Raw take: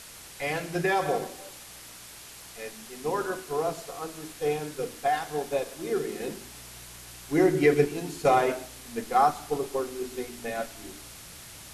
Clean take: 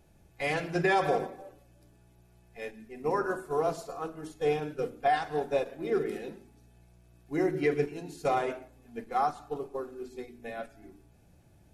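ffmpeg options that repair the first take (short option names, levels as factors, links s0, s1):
-af "afwtdn=0.0063,asetnsamples=n=441:p=0,asendcmd='6.2 volume volume -6.5dB',volume=1"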